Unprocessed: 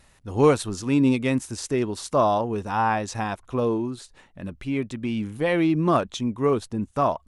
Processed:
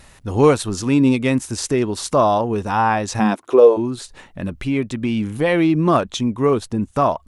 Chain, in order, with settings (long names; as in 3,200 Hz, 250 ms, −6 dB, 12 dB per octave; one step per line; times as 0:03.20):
in parallel at +2.5 dB: downward compressor, threshold −34 dBFS, peak gain reduction 20 dB
0:03.19–0:03.76: on the sum: high-pass with resonance 180 Hz → 610 Hz, resonance Q 4.3
level +3 dB